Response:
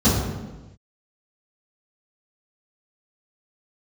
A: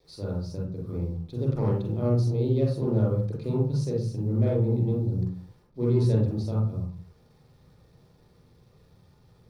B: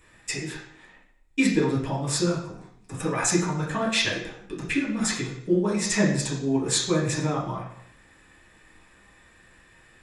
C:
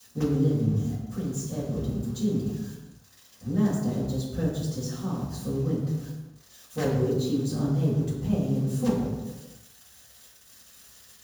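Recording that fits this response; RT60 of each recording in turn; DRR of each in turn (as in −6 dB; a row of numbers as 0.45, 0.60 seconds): C; 0.50 s, 0.65 s, non-exponential decay; −4.0, −6.0, −16.0 decibels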